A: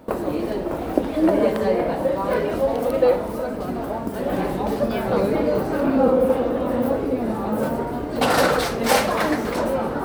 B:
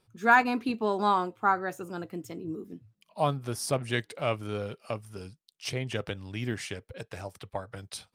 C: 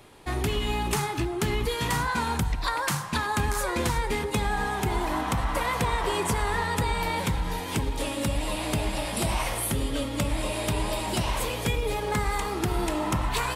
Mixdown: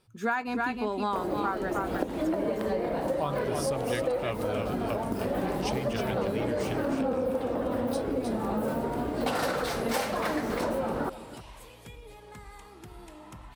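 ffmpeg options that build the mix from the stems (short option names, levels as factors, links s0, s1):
-filter_complex "[0:a]adelay=1050,volume=0.794,asplit=2[s0][s1];[s1]volume=0.119[s2];[1:a]volume=1.33,asplit=2[s3][s4];[s4]volume=0.473[s5];[2:a]adelay=200,volume=0.1[s6];[s2][s5]amix=inputs=2:normalize=0,aecho=0:1:312:1[s7];[s0][s3][s6][s7]amix=inputs=4:normalize=0,acompressor=threshold=0.0501:ratio=6"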